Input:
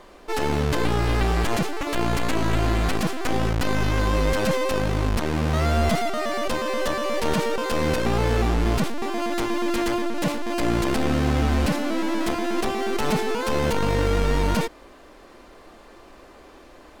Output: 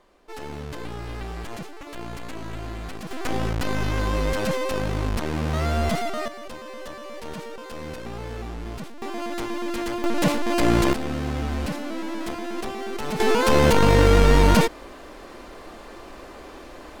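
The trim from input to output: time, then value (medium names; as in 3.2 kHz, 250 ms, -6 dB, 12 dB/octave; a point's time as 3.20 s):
-12 dB
from 3.11 s -2.5 dB
from 6.28 s -12.5 dB
from 9.02 s -4.5 dB
from 10.04 s +3.5 dB
from 10.93 s -6 dB
from 13.20 s +6 dB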